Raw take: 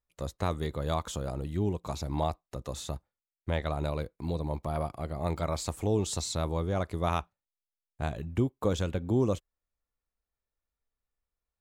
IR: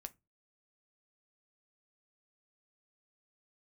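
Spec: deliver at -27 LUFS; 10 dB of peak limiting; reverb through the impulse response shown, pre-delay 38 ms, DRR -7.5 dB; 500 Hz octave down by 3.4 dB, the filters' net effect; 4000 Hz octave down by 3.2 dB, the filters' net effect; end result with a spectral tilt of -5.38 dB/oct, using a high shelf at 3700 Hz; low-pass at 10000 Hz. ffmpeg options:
-filter_complex "[0:a]lowpass=10k,equalizer=f=500:t=o:g=-4.5,highshelf=f=3.7k:g=8.5,equalizer=f=4k:t=o:g=-9,alimiter=level_in=3dB:limit=-24dB:level=0:latency=1,volume=-3dB,asplit=2[a][b];[1:a]atrim=start_sample=2205,adelay=38[c];[b][c]afir=irnorm=-1:irlink=0,volume=12.5dB[d];[a][d]amix=inputs=2:normalize=0,volume=2dB"

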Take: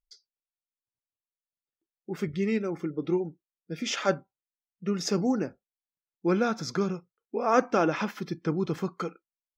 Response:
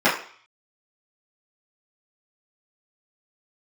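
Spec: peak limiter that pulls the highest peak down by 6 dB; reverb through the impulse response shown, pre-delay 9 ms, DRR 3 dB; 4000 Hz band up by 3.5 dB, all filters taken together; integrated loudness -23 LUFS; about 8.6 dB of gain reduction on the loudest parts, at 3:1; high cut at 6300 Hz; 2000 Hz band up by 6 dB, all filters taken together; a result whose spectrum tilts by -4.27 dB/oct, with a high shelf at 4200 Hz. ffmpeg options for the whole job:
-filter_complex "[0:a]lowpass=6.3k,equalizer=f=2k:t=o:g=8,equalizer=f=4k:t=o:g=6,highshelf=f=4.2k:g=-4.5,acompressor=threshold=-27dB:ratio=3,alimiter=limit=-21.5dB:level=0:latency=1,asplit=2[a][b];[1:a]atrim=start_sample=2205,adelay=9[c];[b][c]afir=irnorm=-1:irlink=0,volume=-24dB[d];[a][d]amix=inputs=2:normalize=0,volume=9dB"

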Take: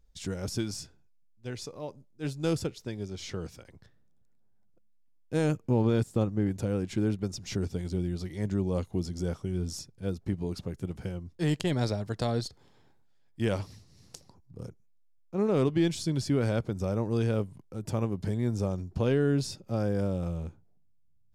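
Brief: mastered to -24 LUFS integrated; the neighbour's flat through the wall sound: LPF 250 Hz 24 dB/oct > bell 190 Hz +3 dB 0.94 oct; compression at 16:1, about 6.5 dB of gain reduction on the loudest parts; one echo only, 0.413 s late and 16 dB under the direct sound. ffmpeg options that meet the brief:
-af "acompressor=threshold=-27dB:ratio=16,lowpass=f=250:w=0.5412,lowpass=f=250:w=1.3066,equalizer=f=190:t=o:w=0.94:g=3,aecho=1:1:413:0.158,volume=11.5dB"

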